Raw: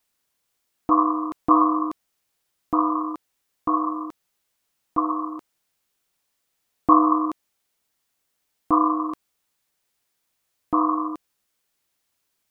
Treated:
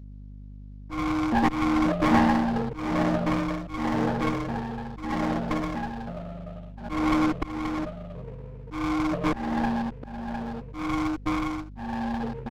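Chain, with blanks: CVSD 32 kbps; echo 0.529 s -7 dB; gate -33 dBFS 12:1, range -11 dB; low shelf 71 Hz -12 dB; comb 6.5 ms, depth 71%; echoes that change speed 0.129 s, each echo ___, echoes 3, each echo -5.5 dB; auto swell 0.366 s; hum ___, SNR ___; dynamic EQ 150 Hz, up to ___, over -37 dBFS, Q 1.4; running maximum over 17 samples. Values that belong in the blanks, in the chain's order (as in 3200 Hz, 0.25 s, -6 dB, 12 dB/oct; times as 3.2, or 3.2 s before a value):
-5 st, 50 Hz, 16 dB, -3 dB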